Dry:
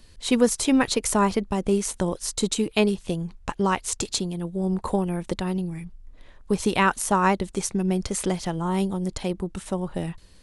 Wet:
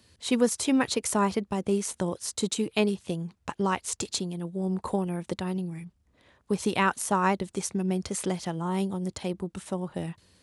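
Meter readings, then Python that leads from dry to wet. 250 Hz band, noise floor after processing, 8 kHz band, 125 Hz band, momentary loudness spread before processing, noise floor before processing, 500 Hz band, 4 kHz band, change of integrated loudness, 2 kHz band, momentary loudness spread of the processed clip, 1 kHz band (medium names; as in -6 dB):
-4.0 dB, -69 dBFS, -4.0 dB, -4.0 dB, 9 LU, -50 dBFS, -4.0 dB, -4.0 dB, -4.0 dB, -4.0 dB, 9 LU, -4.0 dB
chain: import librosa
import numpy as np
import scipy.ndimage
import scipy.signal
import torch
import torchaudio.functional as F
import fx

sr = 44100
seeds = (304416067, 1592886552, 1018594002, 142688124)

y = scipy.signal.sosfilt(scipy.signal.butter(4, 73.0, 'highpass', fs=sr, output='sos'), x)
y = F.gain(torch.from_numpy(y), -4.0).numpy()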